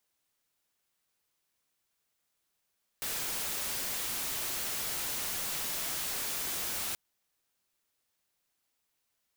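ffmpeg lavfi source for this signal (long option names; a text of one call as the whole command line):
ffmpeg -f lavfi -i "anoisesrc=color=white:amplitude=0.0308:duration=3.93:sample_rate=44100:seed=1" out.wav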